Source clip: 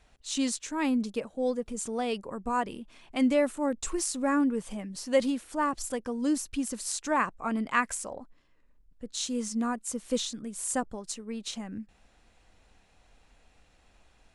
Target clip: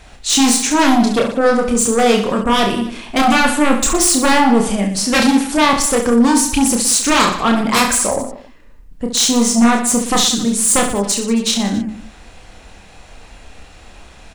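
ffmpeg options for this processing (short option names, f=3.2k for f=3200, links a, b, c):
-af "aeval=exprs='0.299*sin(PI/2*6.31*val(0)/0.299)':c=same,aecho=1:1:30|69|119.7|185.6|271.3:0.631|0.398|0.251|0.158|0.1"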